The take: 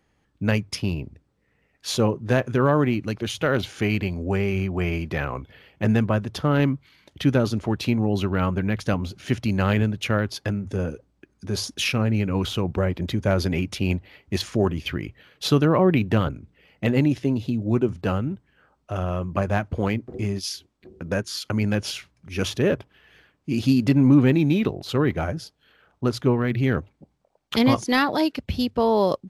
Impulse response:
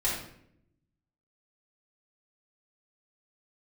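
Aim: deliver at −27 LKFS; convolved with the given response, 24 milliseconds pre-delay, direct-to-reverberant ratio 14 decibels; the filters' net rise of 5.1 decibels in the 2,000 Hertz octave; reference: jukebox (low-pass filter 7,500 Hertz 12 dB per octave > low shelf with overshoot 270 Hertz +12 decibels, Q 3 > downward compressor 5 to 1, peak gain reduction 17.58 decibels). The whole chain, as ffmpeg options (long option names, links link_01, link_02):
-filter_complex "[0:a]equalizer=frequency=2000:width_type=o:gain=7,asplit=2[link_01][link_02];[1:a]atrim=start_sample=2205,adelay=24[link_03];[link_02][link_03]afir=irnorm=-1:irlink=0,volume=-22.5dB[link_04];[link_01][link_04]amix=inputs=2:normalize=0,lowpass=7500,lowshelf=frequency=270:width_type=q:width=3:gain=12,acompressor=threshold=-20dB:ratio=5,volume=-3.5dB"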